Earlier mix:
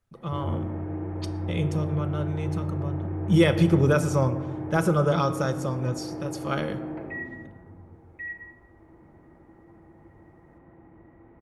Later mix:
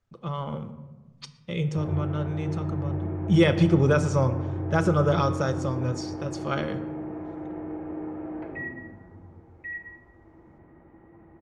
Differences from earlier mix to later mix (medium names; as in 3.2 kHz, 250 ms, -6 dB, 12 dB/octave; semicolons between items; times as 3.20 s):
background: entry +1.45 s; master: add low-pass 7.5 kHz 24 dB/octave